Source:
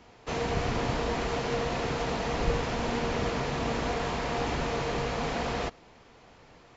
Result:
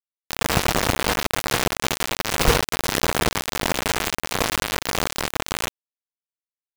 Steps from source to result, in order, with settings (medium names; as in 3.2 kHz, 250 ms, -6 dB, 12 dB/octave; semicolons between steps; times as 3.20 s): vibrato 13 Hz 35 cents; bit crusher 4-bit; trim +8.5 dB